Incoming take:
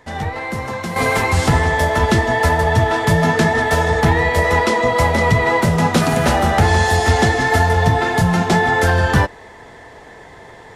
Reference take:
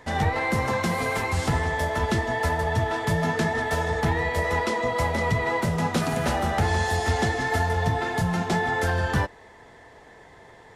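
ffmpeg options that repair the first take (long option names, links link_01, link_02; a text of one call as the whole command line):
ffmpeg -i in.wav -af "asetnsamples=nb_out_samples=441:pad=0,asendcmd='0.96 volume volume -9.5dB',volume=0dB" out.wav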